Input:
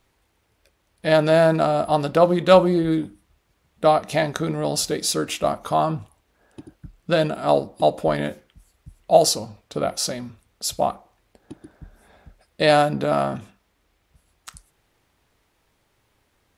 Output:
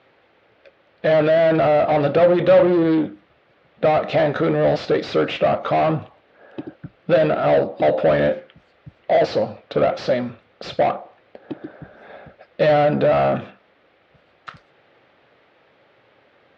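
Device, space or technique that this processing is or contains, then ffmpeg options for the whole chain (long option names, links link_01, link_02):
overdrive pedal into a guitar cabinet: -filter_complex "[0:a]asplit=2[link_01][link_02];[link_02]highpass=frequency=720:poles=1,volume=32dB,asoftclip=type=tanh:threshold=-1dB[link_03];[link_01][link_03]amix=inputs=2:normalize=0,lowpass=frequency=1300:poles=1,volume=-6dB,highpass=83,equalizer=frequency=130:width_type=q:width=4:gain=4,equalizer=frequency=540:width_type=q:width=4:gain=6,equalizer=frequency=980:width_type=q:width=4:gain=-7,lowpass=frequency=4100:width=0.5412,lowpass=frequency=4100:width=1.3066,volume=-8dB"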